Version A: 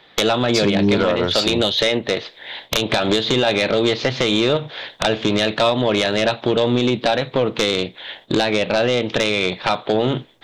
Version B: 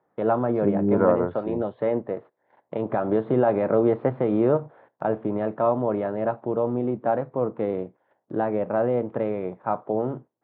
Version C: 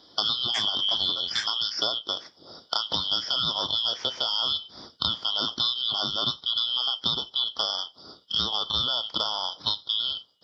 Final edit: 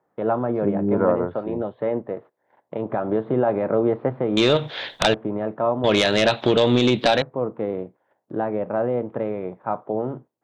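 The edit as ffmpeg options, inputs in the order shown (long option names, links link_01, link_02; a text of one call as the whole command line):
ffmpeg -i take0.wav -i take1.wav -filter_complex "[0:a]asplit=2[link_01][link_02];[1:a]asplit=3[link_03][link_04][link_05];[link_03]atrim=end=4.372[link_06];[link_01]atrim=start=4.368:end=5.142[link_07];[link_04]atrim=start=5.138:end=5.842[link_08];[link_02]atrim=start=5.838:end=7.222[link_09];[link_05]atrim=start=7.218[link_10];[link_06][link_07]acrossfade=duration=0.004:curve1=hsin:curve2=hsin[link_11];[link_11][link_08]acrossfade=duration=0.004:curve1=hsin:curve2=hsin[link_12];[link_12][link_09]acrossfade=duration=0.004:curve1=hsin:curve2=hsin[link_13];[link_13][link_10]acrossfade=duration=0.004:curve1=hsin:curve2=hsin" out.wav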